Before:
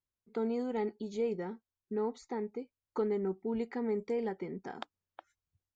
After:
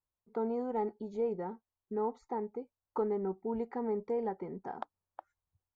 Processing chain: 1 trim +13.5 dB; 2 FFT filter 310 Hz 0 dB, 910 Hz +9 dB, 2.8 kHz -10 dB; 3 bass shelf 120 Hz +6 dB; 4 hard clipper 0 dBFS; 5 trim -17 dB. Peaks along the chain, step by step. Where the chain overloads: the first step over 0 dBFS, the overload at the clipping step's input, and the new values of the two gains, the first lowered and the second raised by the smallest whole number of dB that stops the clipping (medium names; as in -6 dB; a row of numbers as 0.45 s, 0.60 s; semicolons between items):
-7.5 dBFS, -4.5 dBFS, -4.5 dBFS, -4.5 dBFS, -21.5 dBFS; nothing clips